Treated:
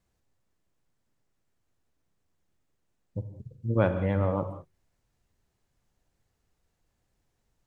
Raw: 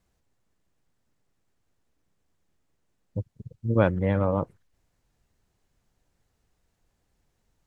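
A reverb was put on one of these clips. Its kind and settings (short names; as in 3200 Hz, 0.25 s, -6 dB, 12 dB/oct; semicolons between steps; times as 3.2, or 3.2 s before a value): non-linear reverb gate 0.22 s flat, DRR 8 dB; gain -3.5 dB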